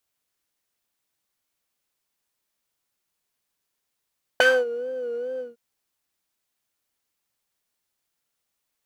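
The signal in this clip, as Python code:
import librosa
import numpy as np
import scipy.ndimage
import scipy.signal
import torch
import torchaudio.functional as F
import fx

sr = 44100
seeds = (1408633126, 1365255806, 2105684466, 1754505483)

y = fx.sub_patch_vibrato(sr, seeds[0], note=71, wave='triangle', wave2='saw', interval_st=19, detune_cents=16, level2_db=-9.0, sub_db=-20, noise_db=-13.5, kind='bandpass', cutoff_hz=200.0, q=1.6, env_oct=3.5, env_decay_s=0.28, env_sustain_pct=30, attack_ms=3.0, decay_s=0.24, sustain_db=-23.0, release_s=0.16, note_s=1.0, lfo_hz=2.4, vibrato_cents=82)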